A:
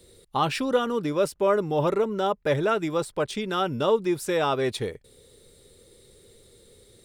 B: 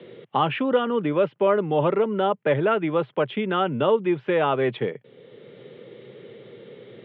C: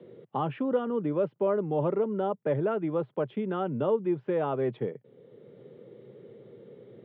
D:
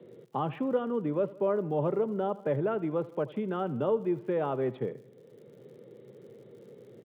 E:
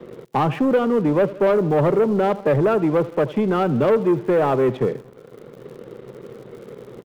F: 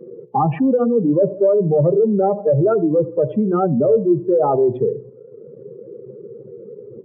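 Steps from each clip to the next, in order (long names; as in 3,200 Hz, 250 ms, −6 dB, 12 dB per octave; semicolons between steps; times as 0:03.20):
Chebyshev band-pass filter 120–3,200 Hz, order 5; multiband upward and downward compressor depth 40%; level +3 dB
parametric band 2,900 Hz −14.5 dB 2.5 octaves; level −4 dB
surface crackle 92 per second −52 dBFS; repeating echo 80 ms, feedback 59%, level −19 dB; level −1.5 dB
leveller curve on the samples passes 2; level +6.5 dB
expanding power law on the bin magnitudes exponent 2.3; hum removal 61.59 Hz, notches 18; level +3 dB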